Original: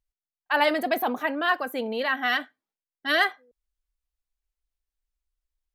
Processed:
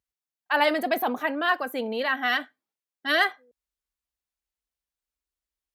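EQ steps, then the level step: HPF 85 Hz 12 dB/oct; 0.0 dB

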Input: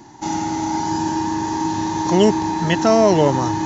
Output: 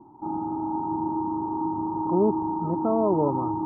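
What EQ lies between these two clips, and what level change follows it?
rippled Chebyshev low-pass 1300 Hz, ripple 6 dB; -5.5 dB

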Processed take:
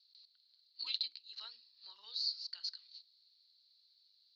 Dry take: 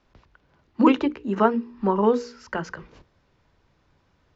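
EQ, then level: Butterworth band-pass 4300 Hz, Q 7; +17.0 dB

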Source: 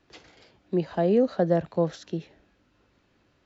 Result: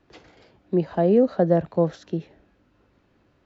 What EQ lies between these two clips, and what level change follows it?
high shelf 2100 Hz -9 dB; +4.0 dB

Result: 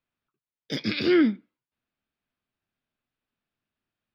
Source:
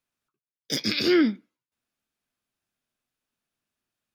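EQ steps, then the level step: air absorption 370 m; low shelf 200 Hz +3.5 dB; high shelf 3500 Hz +11.5 dB; 0.0 dB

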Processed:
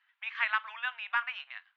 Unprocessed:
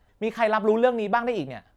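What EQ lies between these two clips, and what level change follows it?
Bessel high-pass 2100 Hz, order 8; LPF 2900 Hz 24 dB/oct; +5.5 dB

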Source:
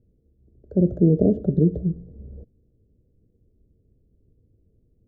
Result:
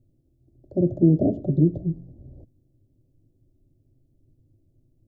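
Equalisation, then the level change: fixed phaser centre 300 Hz, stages 8; +3.0 dB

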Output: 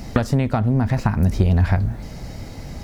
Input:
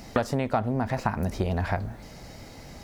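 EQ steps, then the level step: dynamic EQ 660 Hz, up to -5 dB, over -38 dBFS, Q 0.7; low shelf 230 Hz +10 dB; +4.5 dB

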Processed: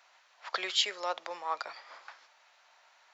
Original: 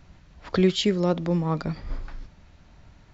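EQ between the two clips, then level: HPF 730 Hz 24 dB/oct; 0.0 dB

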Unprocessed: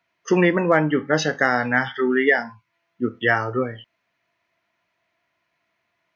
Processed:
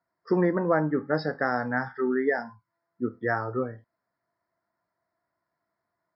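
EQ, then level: Butterworth band-stop 2900 Hz, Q 0.76; brick-wall FIR low-pass 5500 Hz; -5.5 dB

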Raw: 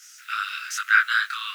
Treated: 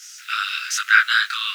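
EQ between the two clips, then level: bell 4100 Hz +9.5 dB 2.5 oct; high shelf 11000 Hz +4 dB; -1.0 dB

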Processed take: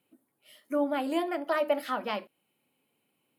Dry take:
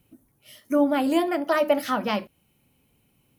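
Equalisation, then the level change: HPF 300 Hz 12 dB/oct; bell 5900 Hz -10.5 dB 0.31 oct; high shelf 12000 Hz -8 dB; -5.5 dB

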